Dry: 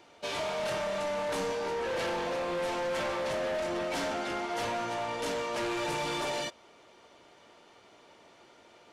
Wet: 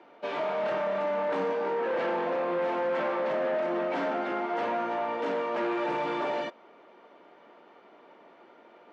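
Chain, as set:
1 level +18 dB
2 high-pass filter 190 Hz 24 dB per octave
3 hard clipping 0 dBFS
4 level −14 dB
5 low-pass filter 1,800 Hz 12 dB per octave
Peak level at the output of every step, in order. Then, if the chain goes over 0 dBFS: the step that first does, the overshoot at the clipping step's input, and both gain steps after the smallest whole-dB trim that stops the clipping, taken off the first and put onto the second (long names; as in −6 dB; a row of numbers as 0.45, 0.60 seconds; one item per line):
−11.5, −4.5, −4.5, −18.5, −20.0 dBFS
no step passes full scale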